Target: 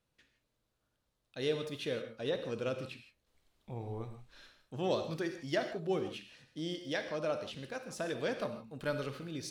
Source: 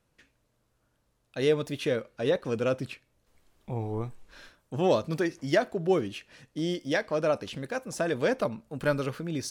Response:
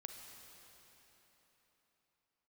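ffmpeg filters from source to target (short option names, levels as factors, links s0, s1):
-filter_complex "[0:a]equalizer=f=3700:w=1.6:g=6[s0];[1:a]atrim=start_sample=2205,afade=t=out:st=0.22:d=0.01,atrim=end_sample=10143[s1];[s0][s1]afir=irnorm=-1:irlink=0,volume=0.668"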